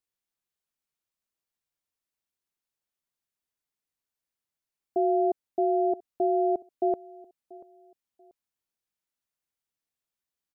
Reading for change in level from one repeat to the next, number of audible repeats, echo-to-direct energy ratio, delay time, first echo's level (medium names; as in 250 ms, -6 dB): -11.5 dB, 2, -20.5 dB, 686 ms, -21.0 dB